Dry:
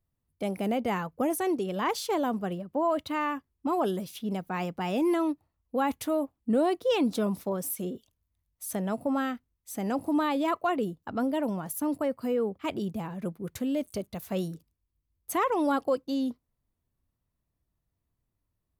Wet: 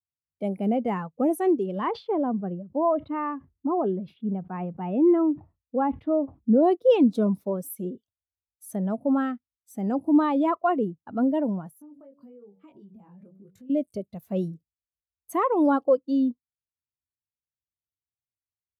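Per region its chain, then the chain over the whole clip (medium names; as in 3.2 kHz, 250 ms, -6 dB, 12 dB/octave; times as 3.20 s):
1.89–6.63 s: distance through air 410 m + decay stretcher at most 140 dB/s
11.69–13.70 s: chorus 1.1 Hz, delay 19.5 ms, depth 2.4 ms + de-hum 94.71 Hz, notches 11 + compression 20:1, threshold -41 dBFS
whole clip: high-pass 62 Hz; spectral contrast expander 1.5:1; trim +7.5 dB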